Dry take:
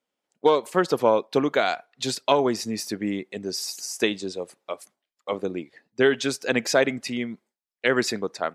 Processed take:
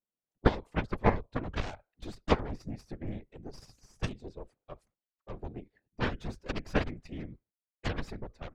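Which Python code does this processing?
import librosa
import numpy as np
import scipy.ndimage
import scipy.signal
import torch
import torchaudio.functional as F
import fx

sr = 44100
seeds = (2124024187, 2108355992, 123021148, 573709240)

p1 = fx.cheby_harmonics(x, sr, harmonics=(3, 8), levels_db=(-8, -33), full_scale_db=-6.0)
p2 = fx.whisperise(p1, sr, seeds[0])
p3 = fx.level_steps(p2, sr, step_db=23)
p4 = p2 + F.gain(torch.from_numpy(p3), -0.5).numpy()
p5 = fx.riaa(p4, sr, side='playback')
y = F.gain(torch.from_numpy(p5), -7.0).numpy()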